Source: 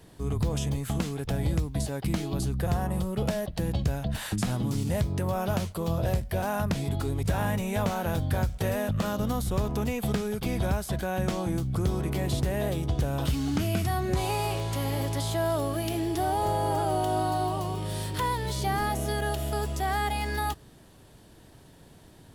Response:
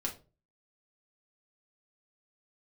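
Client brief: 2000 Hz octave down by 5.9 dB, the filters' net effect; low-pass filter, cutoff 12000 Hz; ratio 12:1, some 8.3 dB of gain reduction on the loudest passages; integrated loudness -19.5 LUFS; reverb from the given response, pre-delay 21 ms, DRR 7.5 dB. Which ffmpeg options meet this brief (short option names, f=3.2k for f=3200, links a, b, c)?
-filter_complex "[0:a]lowpass=12k,equalizer=f=2k:t=o:g=-8,acompressor=threshold=-30dB:ratio=12,asplit=2[a][b];[1:a]atrim=start_sample=2205,adelay=21[c];[b][c]afir=irnorm=-1:irlink=0,volume=-9.5dB[d];[a][d]amix=inputs=2:normalize=0,volume=14.5dB"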